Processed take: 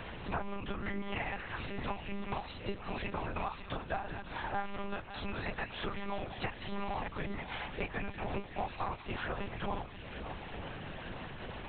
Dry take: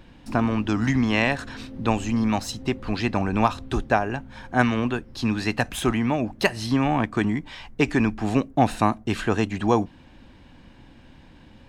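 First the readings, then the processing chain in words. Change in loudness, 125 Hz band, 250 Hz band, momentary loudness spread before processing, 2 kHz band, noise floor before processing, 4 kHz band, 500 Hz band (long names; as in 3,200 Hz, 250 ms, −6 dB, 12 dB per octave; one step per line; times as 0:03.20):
−16.0 dB, −16.0 dB, −20.0 dB, 7 LU, −12.0 dB, −50 dBFS, −11.5 dB, −14.5 dB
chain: high-pass filter 140 Hz 24 dB per octave
low-shelf EQ 330 Hz −6.5 dB
multi-voice chorus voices 2, 0.36 Hz, delay 26 ms, depth 4.8 ms
downward compressor 3 to 1, threshold −44 dBFS, peak gain reduction 18 dB
feedback echo with a long and a short gap by turns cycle 902 ms, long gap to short 1.5 to 1, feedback 56%, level −15.5 dB
amplitude modulation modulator 130 Hz, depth 80%
mains-hum notches 60/120/180/240/300/360/420 Hz
delay with a high-pass on its return 186 ms, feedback 76%, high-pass 1,800 Hz, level −10.5 dB
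dynamic equaliser 890 Hz, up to +5 dB, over −59 dBFS, Q 1.6
one-pitch LPC vocoder at 8 kHz 200 Hz
multiband upward and downward compressor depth 70%
level +7.5 dB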